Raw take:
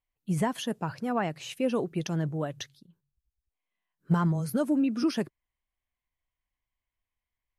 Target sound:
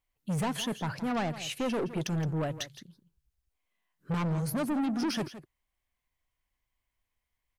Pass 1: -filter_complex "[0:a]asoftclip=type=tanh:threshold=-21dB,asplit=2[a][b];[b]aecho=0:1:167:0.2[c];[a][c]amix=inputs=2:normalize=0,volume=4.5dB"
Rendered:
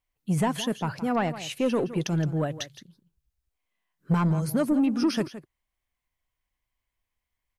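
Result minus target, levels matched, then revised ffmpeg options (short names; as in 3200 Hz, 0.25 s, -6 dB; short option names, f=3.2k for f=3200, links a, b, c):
soft clip: distortion -10 dB
-filter_complex "[0:a]asoftclip=type=tanh:threshold=-32dB,asplit=2[a][b];[b]aecho=0:1:167:0.2[c];[a][c]amix=inputs=2:normalize=0,volume=4.5dB"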